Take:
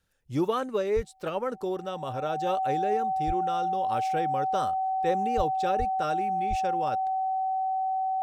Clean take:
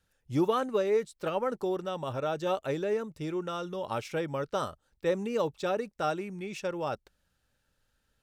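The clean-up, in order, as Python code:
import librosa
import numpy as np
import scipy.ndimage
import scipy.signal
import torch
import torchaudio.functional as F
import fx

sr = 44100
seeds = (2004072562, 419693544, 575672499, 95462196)

y = fx.notch(x, sr, hz=760.0, q=30.0)
y = fx.fix_deplosive(y, sr, at_s=(0.95, 3.26, 5.36, 5.78, 6.49))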